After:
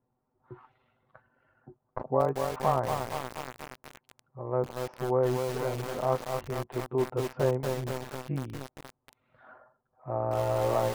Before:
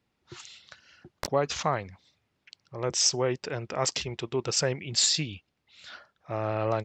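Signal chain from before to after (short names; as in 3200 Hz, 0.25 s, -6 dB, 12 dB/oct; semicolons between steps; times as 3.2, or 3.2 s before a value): ladder low-pass 1200 Hz, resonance 30%; granular stretch 1.6×, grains 42 ms; lo-fi delay 0.236 s, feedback 80%, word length 7-bit, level -4.5 dB; gain +6.5 dB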